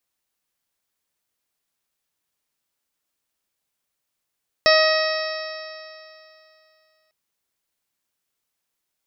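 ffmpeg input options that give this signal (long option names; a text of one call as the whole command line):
ffmpeg -f lavfi -i "aevalsrc='0.2*pow(10,-3*t/2.67)*sin(2*PI*627.63*t)+0.0944*pow(10,-3*t/2.67)*sin(2*PI*1259.01*t)+0.126*pow(10,-3*t/2.67)*sin(2*PI*1897.85*t)+0.0631*pow(10,-3*t/2.67)*sin(2*PI*2547.81*t)+0.0211*pow(10,-3*t/2.67)*sin(2*PI*3212.42*t)+0.0668*pow(10,-3*t/2.67)*sin(2*PI*3895.08*t)+0.0668*pow(10,-3*t/2.67)*sin(2*PI*4599.04*t)+0.112*pow(10,-3*t/2.67)*sin(2*PI*5327.36*t)':duration=2.45:sample_rate=44100" out.wav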